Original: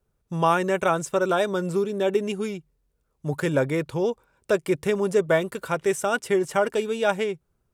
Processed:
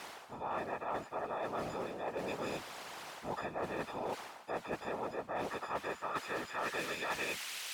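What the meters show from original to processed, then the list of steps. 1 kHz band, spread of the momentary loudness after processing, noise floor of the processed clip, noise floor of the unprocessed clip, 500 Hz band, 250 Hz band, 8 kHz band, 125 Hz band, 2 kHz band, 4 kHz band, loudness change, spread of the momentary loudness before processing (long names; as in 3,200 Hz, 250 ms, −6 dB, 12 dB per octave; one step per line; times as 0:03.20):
−11.0 dB, 6 LU, −53 dBFS, −73 dBFS, −17.5 dB, −17.5 dB, −11.0 dB, −20.0 dB, −11.0 dB, −8.0 dB, −15.0 dB, 9 LU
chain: every partial snapped to a pitch grid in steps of 6 semitones
treble cut that deepens with the level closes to 2,000 Hz, closed at −18 dBFS
tilt shelving filter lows +5.5 dB, about 1,300 Hz
in parallel at −5.5 dB: bit-depth reduction 6 bits, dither triangular
on the sum: random phases in short frames
band-pass filter sweep 810 Hz → 2,800 Hz, 0:05.40–0:07.65
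reversed playback
downward compressor 10 to 1, threshold −32 dBFS, peak gain reduction 22.5 dB
reversed playback
every bin compressed towards the loudest bin 2 to 1
level −2.5 dB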